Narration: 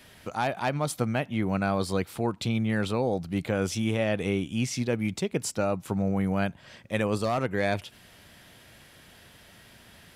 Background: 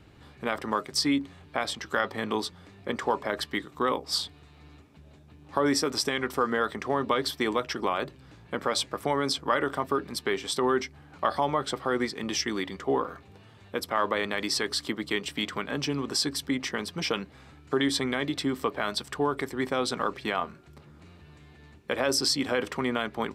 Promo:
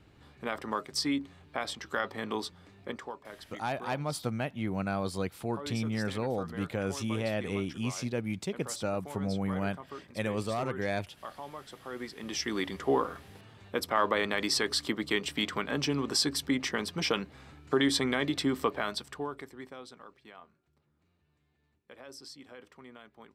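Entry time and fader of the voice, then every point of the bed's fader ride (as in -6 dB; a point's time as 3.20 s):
3.25 s, -5.5 dB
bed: 2.85 s -5 dB
3.16 s -17 dB
11.73 s -17 dB
12.63 s -0.5 dB
18.68 s -0.5 dB
20.04 s -22.5 dB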